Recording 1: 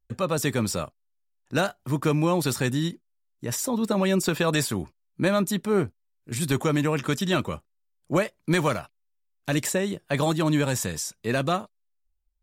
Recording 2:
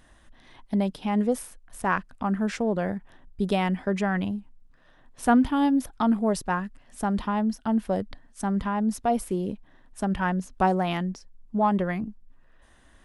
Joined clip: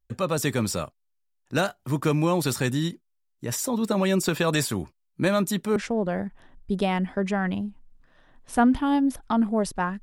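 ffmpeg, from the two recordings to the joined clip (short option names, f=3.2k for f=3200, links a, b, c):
-filter_complex "[0:a]apad=whole_dur=10.02,atrim=end=10.02,atrim=end=5.762[a];[1:a]atrim=start=2.458:end=6.72[b];[a][b]acrossfade=d=0.004:c1=hsin:c2=hsin"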